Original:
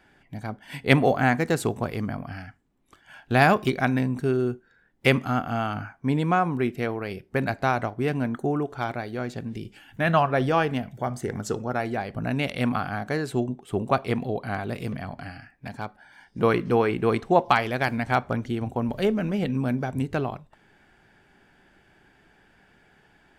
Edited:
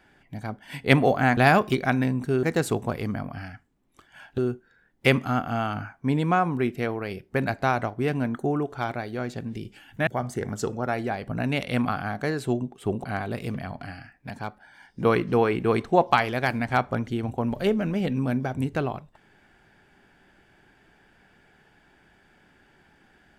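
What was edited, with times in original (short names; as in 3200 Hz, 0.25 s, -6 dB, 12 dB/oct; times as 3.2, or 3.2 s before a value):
3.32–4.38 move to 1.37
10.07–10.94 cut
13.91–14.42 cut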